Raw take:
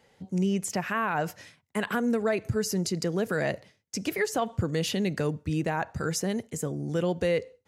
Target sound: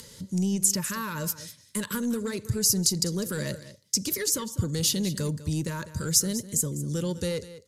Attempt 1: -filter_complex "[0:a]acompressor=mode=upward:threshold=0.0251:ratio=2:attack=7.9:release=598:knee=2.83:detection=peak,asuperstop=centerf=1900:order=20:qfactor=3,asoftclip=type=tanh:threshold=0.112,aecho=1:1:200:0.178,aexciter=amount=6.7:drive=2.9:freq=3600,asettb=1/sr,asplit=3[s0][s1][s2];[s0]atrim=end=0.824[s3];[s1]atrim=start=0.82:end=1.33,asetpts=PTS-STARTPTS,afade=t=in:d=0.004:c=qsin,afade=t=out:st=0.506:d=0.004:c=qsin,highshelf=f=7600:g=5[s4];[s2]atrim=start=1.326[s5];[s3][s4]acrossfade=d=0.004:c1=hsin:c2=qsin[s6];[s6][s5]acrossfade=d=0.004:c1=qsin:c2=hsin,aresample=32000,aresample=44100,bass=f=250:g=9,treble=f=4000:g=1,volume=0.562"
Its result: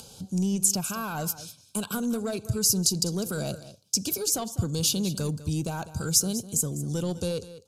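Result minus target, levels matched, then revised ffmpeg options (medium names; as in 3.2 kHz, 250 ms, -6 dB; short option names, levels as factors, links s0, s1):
2 kHz band -3.0 dB
-filter_complex "[0:a]acompressor=mode=upward:threshold=0.0251:ratio=2:attack=7.9:release=598:knee=2.83:detection=peak,asuperstop=centerf=740:order=20:qfactor=3,asoftclip=type=tanh:threshold=0.112,aecho=1:1:200:0.178,aexciter=amount=6.7:drive=2.9:freq=3600,asettb=1/sr,asplit=3[s0][s1][s2];[s0]atrim=end=0.824[s3];[s1]atrim=start=0.82:end=1.33,asetpts=PTS-STARTPTS,afade=t=in:d=0.004:c=qsin,afade=t=out:st=0.506:d=0.004:c=qsin,highshelf=f=7600:g=5[s4];[s2]atrim=start=1.326[s5];[s3][s4]acrossfade=d=0.004:c1=hsin:c2=qsin[s6];[s6][s5]acrossfade=d=0.004:c1=qsin:c2=hsin,aresample=32000,aresample=44100,bass=f=250:g=9,treble=f=4000:g=1,volume=0.562"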